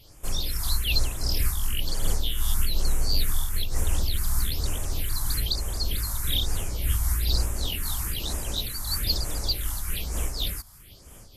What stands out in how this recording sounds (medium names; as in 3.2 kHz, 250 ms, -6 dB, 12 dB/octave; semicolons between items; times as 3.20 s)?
phasing stages 4, 1.1 Hz, lowest notch 440–4200 Hz; random flutter of the level